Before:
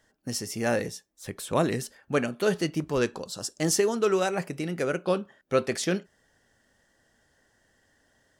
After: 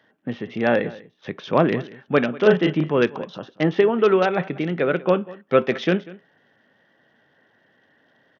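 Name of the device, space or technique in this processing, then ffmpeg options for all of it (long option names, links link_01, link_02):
Bluetooth headset: -filter_complex "[0:a]asettb=1/sr,asplit=3[link_01][link_02][link_03];[link_01]atrim=end=2.394[link_04];[link_02]atrim=start=2.39:end=2.91,asetpts=PTS-STARTPTS,afade=type=in:duration=0.004:curve=qsin,afade=type=out:start_time=0.516:duration=0.004:curve=qsin,asplit=2[link_05][link_06];[link_06]adelay=33,volume=-3.5dB[link_07];[link_05][link_07]amix=inputs=2:normalize=0,atrim=end_sample=22932[link_08];[link_03]atrim=start=2.906[link_09];[link_04][link_08]acrossfade=duration=0.004:curve1=hsin:curve2=qsin[link_10];[link_10][link_09]acrossfade=duration=0.004:curve1=qsin:curve2=hsin,highpass=frequency=130:width=0.5412,highpass=frequency=130:width=1.3066,aecho=1:1:193:0.1,aresample=8000,aresample=44100,volume=7dB" -ar 48000 -c:a sbc -b:a 64k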